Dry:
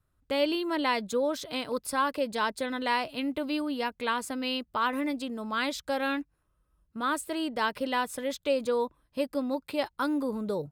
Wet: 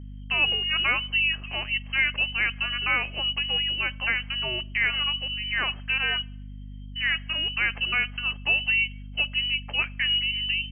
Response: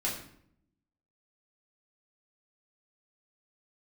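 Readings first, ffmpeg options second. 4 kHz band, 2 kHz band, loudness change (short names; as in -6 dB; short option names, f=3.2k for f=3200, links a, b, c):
+13.5 dB, +11.0 dB, +6.0 dB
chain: -filter_complex "[0:a]lowpass=f=2.7k:t=q:w=0.5098,lowpass=f=2.7k:t=q:w=0.6013,lowpass=f=2.7k:t=q:w=0.9,lowpass=f=2.7k:t=q:w=2.563,afreqshift=-3200,asplit=2[a][b];[1:a]atrim=start_sample=2205[c];[b][c]afir=irnorm=-1:irlink=0,volume=-24dB[d];[a][d]amix=inputs=2:normalize=0,aeval=exprs='val(0)+0.00891*(sin(2*PI*50*n/s)+sin(2*PI*2*50*n/s)/2+sin(2*PI*3*50*n/s)/3+sin(2*PI*4*50*n/s)/4+sin(2*PI*5*50*n/s)/5)':c=same,volume=3dB"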